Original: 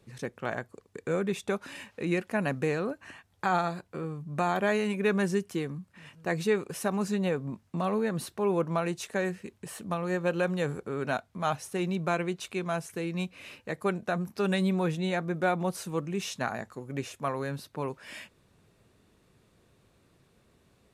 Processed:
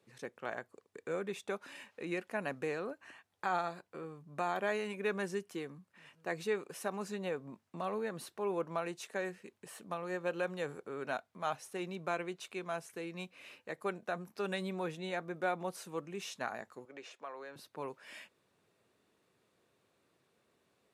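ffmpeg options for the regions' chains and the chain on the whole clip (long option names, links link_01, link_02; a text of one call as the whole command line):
ffmpeg -i in.wav -filter_complex "[0:a]asettb=1/sr,asplit=3[link_01][link_02][link_03];[link_01]atrim=end=16.854[link_04];[link_02]atrim=start=16.85:end=17.56,asetpts=PTS-STARTPTS,afade=type=in:duration=0.004:curve=qsin,afade=type=out:start_time=0.706:duration=0.004:curve=qsin,acrossover=split=300 6600:gain=0.112 1 0.112[link_05][link_06][link_07];[link_05][link_06][link_07]amix=inputs=3:normalize=0,acompressor=threshold=-38dB:ratio=2:attack=3.2:release=140:knee=1:detection=peak[link_08];[link_03]atrim=start=17.556[link_09];[link_04][link_08]acrossfade=duration=0.004:curve1=hsin:curve2=qsin[link_10];[link_10][link_09]acrossfade=duration=0.004:curve1=qsin:curve2=hsin,highpass=98,bass=frequency=250:gain=-10,treble=frequency=4000:gain=-2,volume=-6.5dB" out.wav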